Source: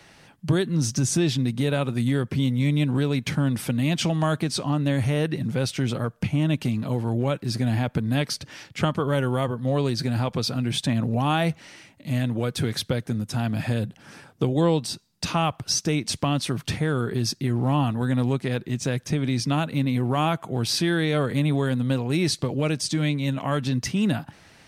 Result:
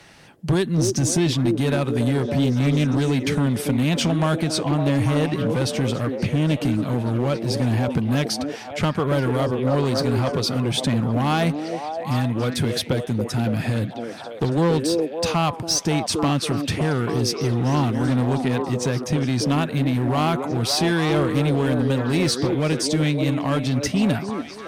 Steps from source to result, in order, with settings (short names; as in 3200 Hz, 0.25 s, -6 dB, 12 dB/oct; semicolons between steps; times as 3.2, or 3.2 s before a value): delay with a stepping band-pass 0.28 s, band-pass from 370 Hz, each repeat 0.7 oct, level -1.5 dB; one-sided clip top -18.5 dBFS, bottom -15.5 dBFS; gain +3 dB